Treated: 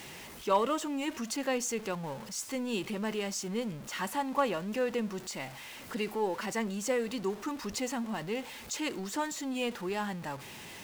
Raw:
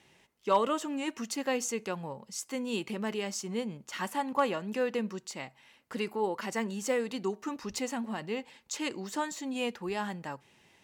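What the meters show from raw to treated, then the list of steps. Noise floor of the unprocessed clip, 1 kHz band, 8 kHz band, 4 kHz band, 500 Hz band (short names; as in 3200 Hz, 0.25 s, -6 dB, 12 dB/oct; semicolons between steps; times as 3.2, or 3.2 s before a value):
-64 dBFS, -0.5 dB, +1.0 dB, +0.5 dB, -0.5 dB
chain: zero-crossing step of -40 dBFS; gain -1.5 dB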